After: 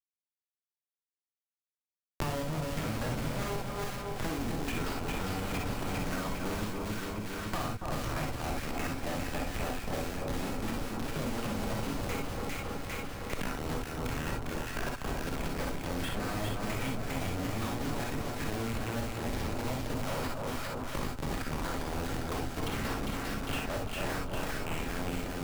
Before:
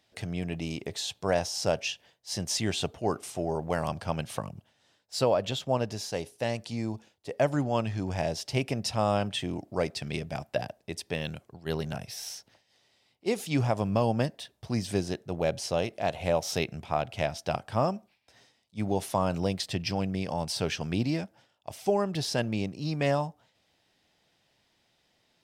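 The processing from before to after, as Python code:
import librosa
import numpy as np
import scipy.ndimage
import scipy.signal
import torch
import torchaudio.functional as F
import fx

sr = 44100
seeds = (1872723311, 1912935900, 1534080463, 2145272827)

y = x[::-1].copy()
y = fx.band_shelf(y, sr, hz=610.0, db=-11.0, octaves=1.7)
y = fx.hum_notches(y, sr, base_hz=60, count=6)
y = fx.level_steps(y, sr, step_db=11)
y = fx.quant_companded(y, sr, bits=2)
y = fx.filter_lfo_bandpass(y, sr, shape='saw_down', hz=1.5, low_hz=420.0, high_hz=2100.0, q=1.4)
y = fx.schmitt(y, sr, flips_db=-39.0)
y = fx.echo_split(y, sr, split_hz=1300.0, low_ms=279, high_ms=402, feedback_pct=52, wet_db=-4.0)
y = fx.rev_gated(y, sr, seeds[0], gate_ms=80, shape='rising', drr_db=0.0)
y = fx.band_squash(y, sr, depth_pct=100)
y = y * 10.0 ** (4.5 / 20.0)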